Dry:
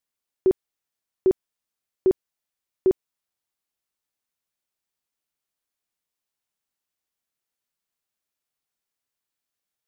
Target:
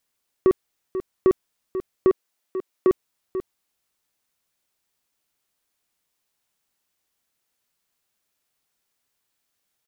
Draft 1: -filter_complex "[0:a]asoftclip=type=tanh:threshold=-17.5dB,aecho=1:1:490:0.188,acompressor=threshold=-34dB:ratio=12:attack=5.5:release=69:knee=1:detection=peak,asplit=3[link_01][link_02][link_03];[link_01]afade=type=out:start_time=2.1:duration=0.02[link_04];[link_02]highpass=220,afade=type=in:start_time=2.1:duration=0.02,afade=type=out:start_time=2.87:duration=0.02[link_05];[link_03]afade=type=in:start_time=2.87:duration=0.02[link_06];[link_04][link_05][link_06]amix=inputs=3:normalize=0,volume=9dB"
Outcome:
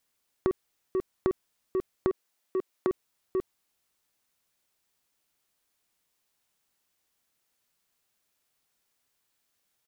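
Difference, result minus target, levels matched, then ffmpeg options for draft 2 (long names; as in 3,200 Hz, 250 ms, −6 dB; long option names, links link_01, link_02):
downward compressor: peak gain reduction +10 dB
-filter_complex "[0:a]asoftclip=type=tanh:threshold=-17.5dB,aecho=1:1:490:0.188,acompressor=threshold=-23dB:ratio=12:attack=5.5:release=69:knee=1:detection=peak,asplit=3[link_01][link_02][link_03];[link_01]afade=type=out:start_time=2.1:duration=0.02[link_04];[link_02]highpass=220,afade=type=in:start_time=2.1:duration=0.02,afade=type=out:start_time=2.87:duration=0.02[link_05];[link_03]afade=type=in:start_time=2.87:duration=0.02[link_06];[link_04][link_05][link_06]amix=inputs=3:normalize=0,volume=9dB"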